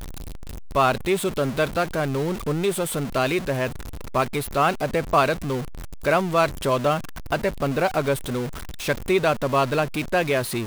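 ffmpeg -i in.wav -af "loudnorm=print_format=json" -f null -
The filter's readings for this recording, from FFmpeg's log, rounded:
"input_i" : "-23.6",
"input_tp" : "-5.9",
"input_lra" : "1.7",
"input_thresh" : "-33.8",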